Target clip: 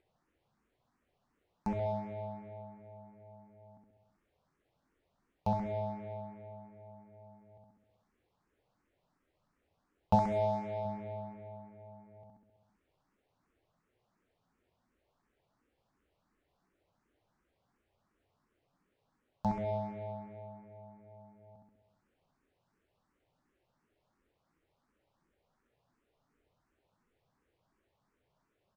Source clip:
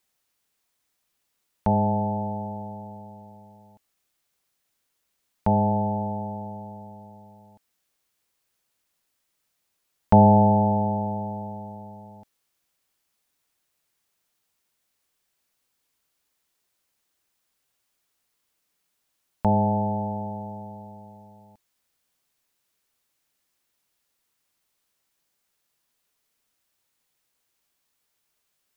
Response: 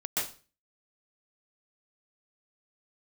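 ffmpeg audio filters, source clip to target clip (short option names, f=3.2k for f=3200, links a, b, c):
-filter_complex "[0:a]aecho=1:1:66|132|198|264|330|396|462|528:0.668|0.368|0.202|0.111|0.0612|0.0336|0.0185|0.0102,acompressor=mode=upward:threshold=-35dB:ratio=2.5,aemphasis=mode=production:type=50kf,adynamicsmooth=sensitivity=3:basefreq=870,asettb=1/sr,asplit=3[a][b][c];[a]atrim=end=10.154[d];[b]atrim=start=10.15:end=10.85,asetpts=PTS-STARTPTS,afade=t=in:d=0.004:c=qsin,afade=t=out:st=0.696:d=0.004:c=qsin,lowshelf=f=340:g=-6[e];[c]atrim=start=10.846[f];[d][e]acrossfade=d=0.004:c1=hsin:c2=qsin[g];[g][f]acrossfade=d=0.004:c1=qsin:c2=hsin,asplit=2[h][i];[i]afreqshift=2.8[j];[h][j]amix=inputs=2:normalize=1,volume=-8.5dB"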